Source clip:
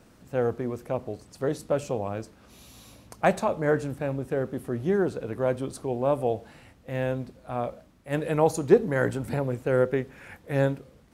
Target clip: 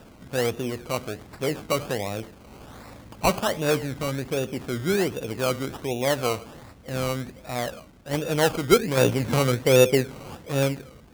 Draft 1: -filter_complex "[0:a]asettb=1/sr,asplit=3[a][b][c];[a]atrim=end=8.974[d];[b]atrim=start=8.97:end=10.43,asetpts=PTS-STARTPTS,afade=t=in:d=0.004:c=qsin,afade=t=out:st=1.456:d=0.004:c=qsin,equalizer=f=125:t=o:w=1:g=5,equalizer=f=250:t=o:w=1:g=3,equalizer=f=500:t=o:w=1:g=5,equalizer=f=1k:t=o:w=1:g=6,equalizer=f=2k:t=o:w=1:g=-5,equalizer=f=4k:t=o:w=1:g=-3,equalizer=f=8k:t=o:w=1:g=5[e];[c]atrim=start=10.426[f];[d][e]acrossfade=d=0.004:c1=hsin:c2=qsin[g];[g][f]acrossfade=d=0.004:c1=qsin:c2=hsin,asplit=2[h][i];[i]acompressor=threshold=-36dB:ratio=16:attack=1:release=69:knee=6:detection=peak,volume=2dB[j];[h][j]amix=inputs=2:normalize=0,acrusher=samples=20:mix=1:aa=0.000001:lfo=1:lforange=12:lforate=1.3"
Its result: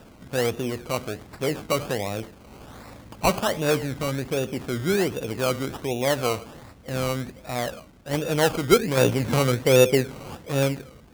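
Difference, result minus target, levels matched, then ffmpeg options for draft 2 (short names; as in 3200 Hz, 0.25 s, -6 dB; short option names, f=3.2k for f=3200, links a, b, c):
compressor: peak gain reduction -5.5 dB
-filter_complex "[0:a]asettb=1/sr,asplit=3[a][b][c];[a]atrim=end=8.974[d];[b]atrim=start=8.97:end=10.43,asetpts=PTS-STARTPTS,afade=t=in:d=0.004:c=qsin,afade=t=out:st=1.456:d=0.004:c=qsin,equalizer=f=125:t=o:w=1:g=5,equalizer=f=250:t=o:w=1:g=3,equalizer=f=500:t=o:w=1:g=5,equalizer=f=1k:t=o:w=1:g=6,equalizer=f=2k:t=o:w=1:g=-5,equalizer=f=4k:t=o:w=1:g=-3,equalizer=f=8k:t=o:w=1:g=5[e];[c]atrim=start=10.426[f];[d][e]acrossfade=d=0.004:c1=hsin:c2=qsin[g];[g][f]acrossfade=d=0.004:c1=qsin:c2=hsin,asplit=2[h][i];[i]acompressor=threshold=-42dB:ratio=16:attack=1:release=69:knee=6:detection=peak,volume=2dB[j];[h][j]amix=inputs=2:normalize=0,acrusher=samples=20:mix=1:aa=0.000001:lfo=1:lforange=12:lforate=1.3"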